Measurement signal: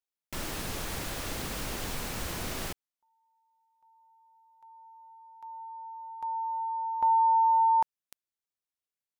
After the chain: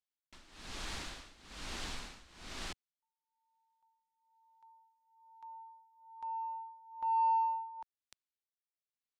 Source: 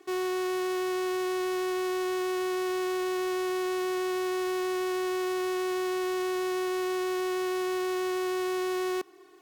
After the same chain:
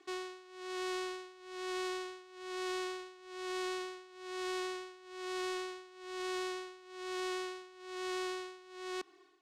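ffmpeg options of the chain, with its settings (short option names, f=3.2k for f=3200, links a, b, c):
-af "tremolo=f=1.1:d=0.9,adynamicsmooth=sensitivity=2.5:basefreq=5k,equalizer=f=125:t=o:w=1:g=-10,equalizer=f=500:t=o:w=1:g=-7,equalizer=f=4k:t=o:w=1:g=5,equalizer=f=8k:t=o:w=1:g=6,volume=-4dB"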